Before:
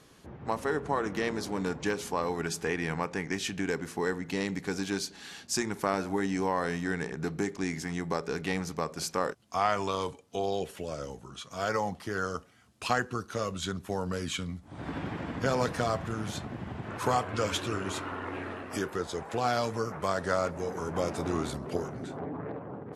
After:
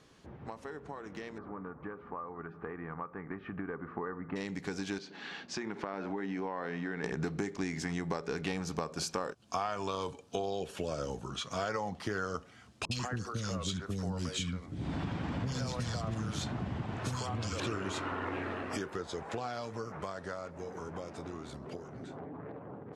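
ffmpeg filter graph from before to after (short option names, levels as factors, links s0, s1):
-filter_complex "[0:a]asettb=1/sr,asplit=3[s0][s1][s2];[s0]atrim=end=1.384[s3];[s1]atrim=start=1.38:end=4.36,asetpts=PTS-STARTPTS,afade=t=in:d=0.004:c=qsin,afade=t=out:st=2.976:d=0.004:c=qsin,lowpass=f=1700:w=0.5412,lowpass=f=1700:w=1.3066,equalizer=f=1200:t=o:w=0.25:g=13.5[s4];[s2]atrim=start=4.356[s5];[s3][s4]acrossfade=d=0.004:c1=hsin:c2=qsin[s6];[s6][s5]acrossfade=d=0.004:c1=qsin:c2=hsin,asettb=1/sr,asplit=3[s7][s8][s9];[s7]atrim=end=4.984[s10];[s8]atrim=start=4.98:end=7.04,asetpts=PTS-STARTPTS,afade=t=in:d=0.004:c=qsin,afade=t=out:st=2.056:d=0.004:c=qsin,highpass=170,lowpass=2900,acompressor=threshold=0.0112:ratio=3:attack=3.2:release=140:knee=1:detection=peak[s11];[s9]atrim=start=7.036[s12];[s10][s11]acrossfade=d=0.004:c1=hsin:c2=qsin[s13];[s13][s12]acrossfade=d=0.004:c1=qsin:c2=hsin,asettb=1/sr,asplit=3[s14][s15][s16];[s14]atrim=end=8.474[s17];[s15]atrim=start=8.47:end=11.31,asetpts=PTS-STARTPTS,afade=t=in:d=0.004:c=qsin,afade=t=out:st=2.836:d=0.004:c=qsin,highshelf=f=11000:g=6,bandreject=f=2000:w=7.7[s18];[s16]atrim=start=11.306[s19];[s17][s18]acrossfade=d=0.004:c1=hsin:c2=qsin[s20];[s20][s19]acrossfade=d=0.004:c1=qsin:c2=hsin,asettb=1/sr,asplit=3[s21][s22][s23];[s21]atrim=end=12.854[s24];[s22]atrim=start=12.85:end=17.6,asetpts=PTS-STARTPTS,afade=t=in:d=0.004:c=qsin,afade=t=out:st=4.746:d=0.004:c=qsin,acrossover=split=220|3000[s25][s26][s27];[s26]acompressor=threshold=0.01:ratio=4:attack=3.2:release=140:knee=2.83:detection=peak[s28];[s25][s28][s27]amix=inputs=3:normalize=0,acrossover=split=420|1900[s29][s30][s31];[s31]adelay=60[s32];[s30]adelay=140[s33];[s29][s33][s32]amix=inputs=3:normalize=0,atrim=end_sample=209475[s34];[s23]atrim=start=17.596[s35];[s24][s34]acrossfade=d=0.004:c1=hsin:c2=qsin[s36];[s36][s35]acrossfade=d=0.004:c1=qsin:c2=hsin,acompressor=threshold=0.0141:ratio=6,lowpass=7300,dynaudnorm=f=490:g=17:m=2.82,volume=0.668"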